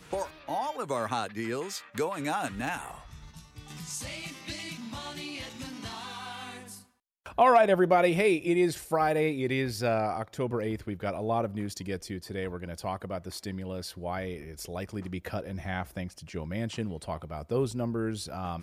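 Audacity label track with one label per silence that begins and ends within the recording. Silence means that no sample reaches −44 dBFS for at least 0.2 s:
6.820000	7.260000	silence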